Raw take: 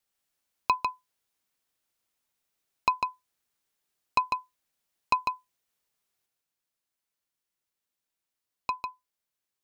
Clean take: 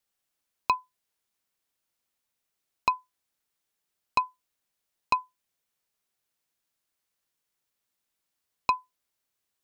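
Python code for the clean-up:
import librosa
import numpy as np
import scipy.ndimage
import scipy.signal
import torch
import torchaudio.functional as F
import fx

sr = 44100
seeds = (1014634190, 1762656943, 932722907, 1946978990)

y = fx.fix_echo_inverse(x, sr, delay_ms=149, level_db=-5.0)
y = fx.gain(y, sr, db=fx.steps((0.0, 0.0), (6.26, 6.0)))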